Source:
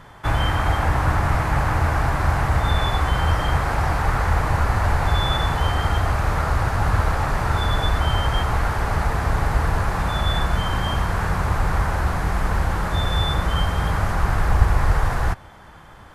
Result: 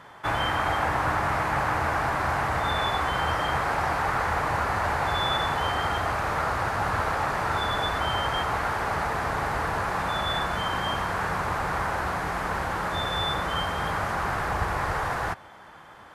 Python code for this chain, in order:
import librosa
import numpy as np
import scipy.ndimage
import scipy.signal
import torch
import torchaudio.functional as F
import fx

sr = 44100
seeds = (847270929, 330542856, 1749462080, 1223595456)

y = fx.highpass(x, sr, hz=390.0, slope=6)
y = fx.high_shelf(y, sr, hz=4400.0, db=-5.5)